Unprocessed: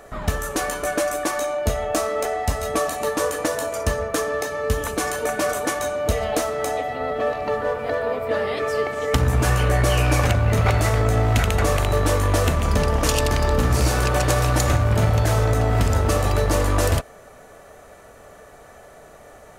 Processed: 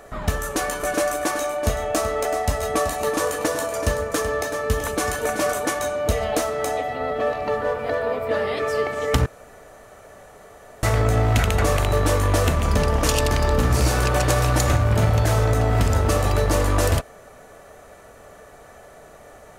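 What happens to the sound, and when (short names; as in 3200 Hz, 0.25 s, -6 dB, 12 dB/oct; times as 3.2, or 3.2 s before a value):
0.42–5.53 echo 0.379 s -10 dB
9.26–10.83 room tone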